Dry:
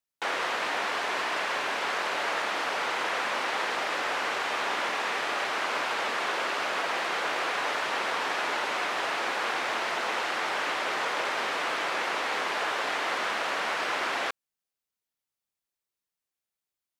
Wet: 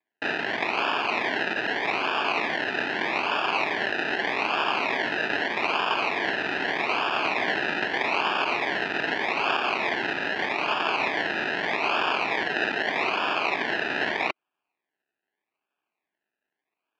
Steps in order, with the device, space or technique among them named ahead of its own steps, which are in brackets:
Butterworth high-pass 330 Hz 96 dB per octave
circuit-bent sampling toy (sample-and-hold swept by an LFO 31×, swing 60% 0.81 Hz; loudspeaker in its box 420–4,200 Hz, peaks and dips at 520 Hz −10 dB, 1,700 Hz +9 dB, 2,500 Hz +9 dB)
level +5.5 dB

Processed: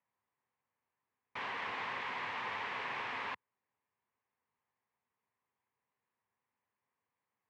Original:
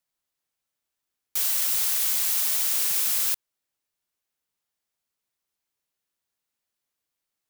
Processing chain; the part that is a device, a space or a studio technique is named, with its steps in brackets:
bass cabinet (loudspeaker in its box 87–2,000 Hz, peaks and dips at 170 Hz −6 dB, 320 Hz −8 dB, 620 Hz −7 dB, 1,000 Hz +6 dB, 1,400 Hz −8 dB)
level +5.5 dB

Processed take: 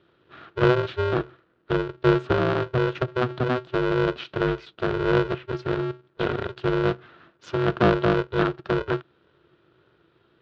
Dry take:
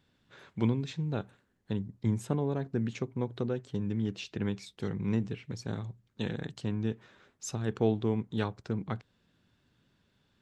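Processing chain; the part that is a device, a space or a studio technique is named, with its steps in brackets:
ring modulator pedal into a guitar cabinet (ring modulator with a square carrier 250 Hz; loudspeaker in its box 77–3,600 Hz, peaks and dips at 130 Hz +3 dB, 340 Hz +9 dB, 830 Hz −4 dB, 1,400 Hz +8 dB, 2,100 Hz −5 dB)
level +7 dB

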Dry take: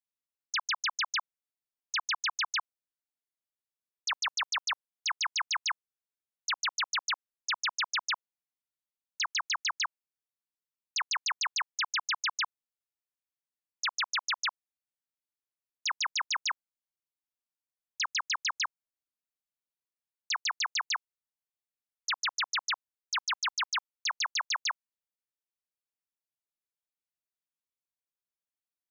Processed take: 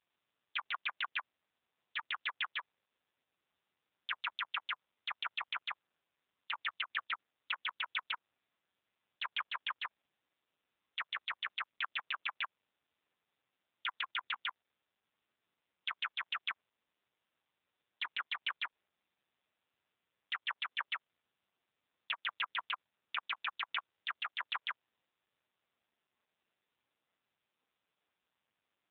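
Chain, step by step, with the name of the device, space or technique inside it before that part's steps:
0:15.98–0:16.48: high-pass filter 87 Hz 24 dB per octave
voicemail (band-pass filter 350–3,100 Hz; downward compressor 10 to 1, threshold −32 dBFS, peak gain reduction 4 dB; level +5 dB; AMR narrowband 5.9 kbit/s 8,000 Hz)

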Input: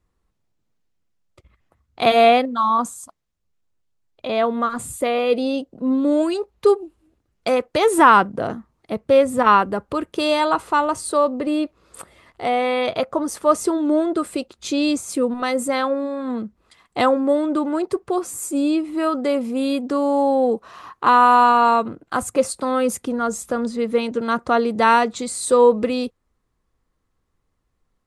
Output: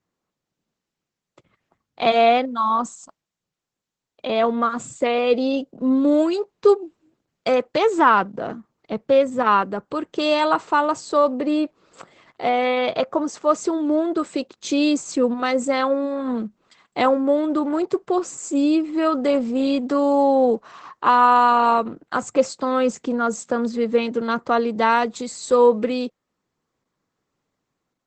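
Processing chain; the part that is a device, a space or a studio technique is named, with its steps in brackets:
video call (high-pass filter 130 Hz 24 dB per octave; automatic gain control gain up to 4 dB; level −2.5 dB; Opus 12 kbit/s 48,000 Hz)

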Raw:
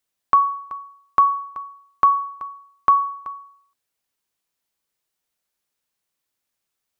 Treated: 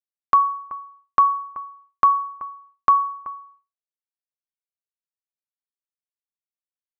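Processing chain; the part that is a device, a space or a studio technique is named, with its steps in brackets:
hearing-loss simulation (low-pass filter 1,900 Hz 12 dB per octave; downward expander −48 dBFS)

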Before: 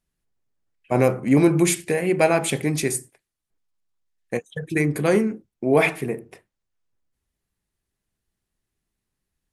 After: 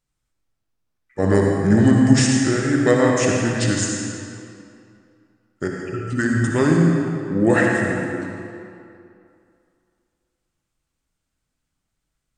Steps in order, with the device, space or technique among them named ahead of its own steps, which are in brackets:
slowed and reverbed (speed change −23%; convolution reverb RT60 2.5 s, pre-delay 54 ms, DRR −1 dB)

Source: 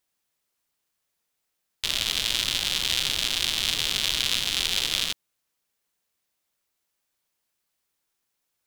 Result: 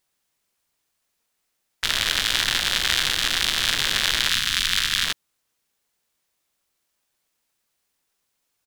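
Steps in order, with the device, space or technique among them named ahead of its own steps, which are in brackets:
0:04.29–0:05.05: flat-topped bell 750 Hz −11.5 dB 2.6 octaves
octave pedal (pitch-shifted copies added −12 semitones −5 dB)
level +2.5 dB

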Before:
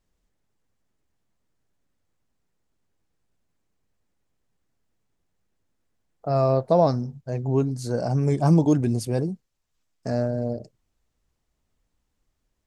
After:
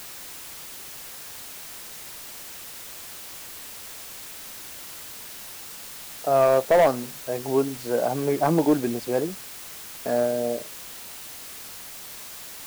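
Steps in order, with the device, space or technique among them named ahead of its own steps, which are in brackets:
aircraft radio (band-pass filter 370–2,700 Hz; hard clipping −17.5 dBFS, distortion −14 dB; white noise bed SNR 12 dB)
level +5 dB

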